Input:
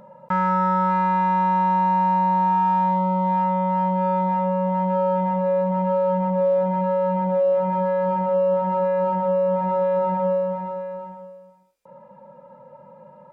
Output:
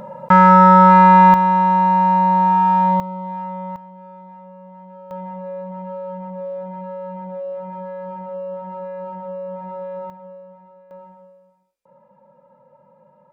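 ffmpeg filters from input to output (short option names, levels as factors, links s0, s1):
-af "asetnsamples=n=441:p=0,asendcmd='1.34 volume volume 4.5dB;3 volume volume -7.5dB;3.76 volume volume -19dB;5.11 volume volume -9.5dB;10.1 volume volume -18dB;10.91 volume volume -7dB',volume=3.76"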